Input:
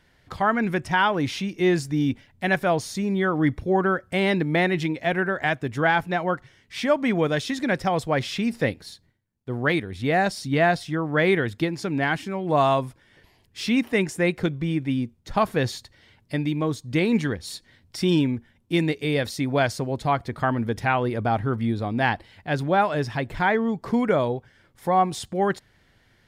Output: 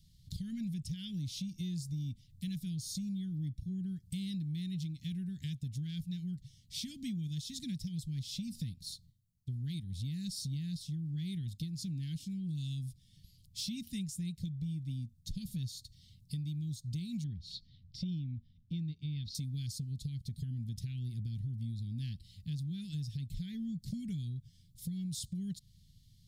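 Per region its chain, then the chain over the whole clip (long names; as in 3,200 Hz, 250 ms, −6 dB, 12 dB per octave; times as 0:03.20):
0:17.24–0:19.35: high-frequency loss of the air 250 metres + auto-filter bell 1.2 Hz 470–4,900 Hz +7 dB
whole clip: elliptic band-stop filter 170–3,800 Hz, stop band 60 dB; parametric band 2,700 Hz −5 dB 2 octaves; downward compressor 6 to 1, threshold −39 dBFS; level +2.5 dB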